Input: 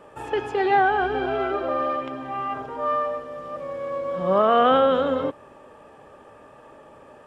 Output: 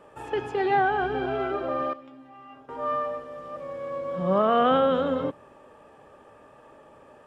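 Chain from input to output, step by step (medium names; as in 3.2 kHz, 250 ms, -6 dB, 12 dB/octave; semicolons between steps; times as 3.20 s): dynamic bell 160 Hz, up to +7 dB, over -41 dBFS, Q 1.1; 1.93–2.69 s: feedback comb 280 Hz, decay 0.21 s, harmonics all, mix 90%; trim -4 dB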